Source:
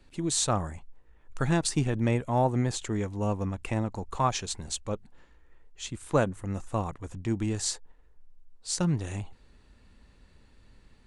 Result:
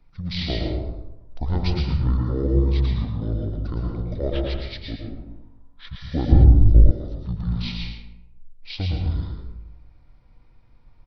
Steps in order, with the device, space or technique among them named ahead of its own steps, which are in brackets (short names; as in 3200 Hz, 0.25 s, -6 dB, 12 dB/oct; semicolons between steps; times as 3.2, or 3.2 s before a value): bell 3100 Hz -3.5 dB 1 oct; monster voice (pitch shift -11 st; low shelf 110 Hz +6.5 dB; echo 0.109 s -8 dB; reverb RT60 0.85 s, pre-delay 0.111 s, DRR 0.5 dB); 6.05–6.41 spectral repair 1400–9000 Hz before; 6.32–6.91 RIAA curve playback; gain -2.5 dB